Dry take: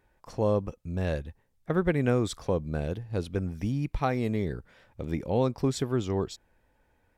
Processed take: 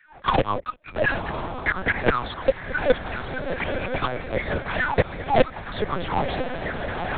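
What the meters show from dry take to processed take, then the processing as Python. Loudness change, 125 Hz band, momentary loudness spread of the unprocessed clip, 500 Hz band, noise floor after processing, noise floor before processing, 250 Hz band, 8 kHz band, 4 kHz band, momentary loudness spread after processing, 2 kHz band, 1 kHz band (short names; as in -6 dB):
+4.5 dB, -1.5 dB, 10 LU, +5.0 dB, -46 dBFS, -70 dBFS, -1.0 dB, under -35 dB, +9.5 dB, 7 LU, +16.5 dB, +12.0 dB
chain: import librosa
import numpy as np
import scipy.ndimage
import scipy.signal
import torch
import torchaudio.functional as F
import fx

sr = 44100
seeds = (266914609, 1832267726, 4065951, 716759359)

p1 = fx.recorder_agc(x, sr, target_db=-17.0, rise_db_per_s=62.0, max_gain_db=30)
p2 = fx.filter_lfo_highpass(p1, sr, shape='saw_down', hz=4.8, low_hz=510.0, high_hz=2000.0, q=6.9)
p3 = fx.quant_companded(p2, sr, bits=2)
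p4 = p2 + (p3 * 10.0 ** (-7.5 / 20.0))
p5 = fx.rotary_switch(p4, sr, hz=5.5, then_hz=1.2, switch_at_s=0.71)
p6 = fx.tremolo_random(p5, sr, seeds[0], hz=3.5, depth_pct=55)
p7 = p6 + fx.echo_diffused(p6, sr, ms=972, feedback_pct=55, wet_db=-10.5, dry=0)
p8 = fx.lpc_vocoder(p7, sr, seeds[1], excitation='pitch_kept', order=8)
p9 = fx.band_squash(p8, sr, depth_pct=40)
y = p9 * 10.0 ** (4.0 / 20.0)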